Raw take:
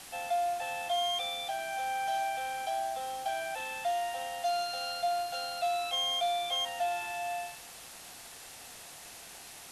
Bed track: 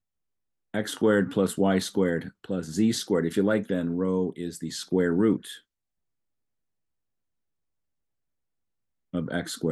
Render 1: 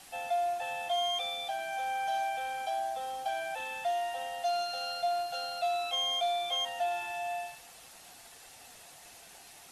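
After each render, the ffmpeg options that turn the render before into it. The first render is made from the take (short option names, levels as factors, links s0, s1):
-af "afftdn=nr=6:nf=-49"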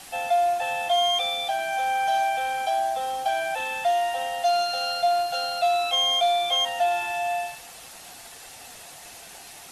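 -af "volume=2.82"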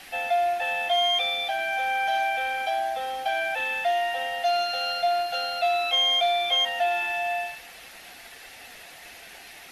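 -af "equalizer=f=125:t=o:w=1:g=-7,equalizer=f=1000:t=o:w=1:g=-5,equalizer=f=2000:t=o:w=1:g=7,equalizer=f=8000:t=o:w=1:g=-10"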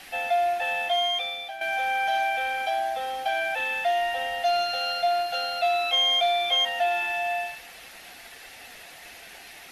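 -filter_complex "[0:a]asettb=1/sr,asplit=3[s0][s1][s2];[s0]atrim=end=3.974[s3];[s1]atrim=start=3.97:end=4.76,asetpts=PTS-STARTPTS,afade=t=in:d=0.004:c=qsin,afade=t=out:st=0.786:d=0.004:c=qsin,lowshelf=f=110:g=8.5[s4];[s2]atrim=start=4.756[s5];[s3][s4]acrossfade=d=0.004:c1=hsin:c2=qsin[s6];[s6][s5]acrossfade=d=0.004:c1=qsin:c2=hsin,asplit=2[s7][s8];[s7]atrim=end=1.61,asetpts=PTS-STARTPTS,afade=t=out:st=0.78:d=0.83:silence=0.281838[s9];[s8]atrim=start=1.61,asetpts=PTS-STARTPTS,afade=t=in:d=0.004:c=hsin:silence=0.281838[s10];[s9][s10]concat=n=2:v=0:a=1"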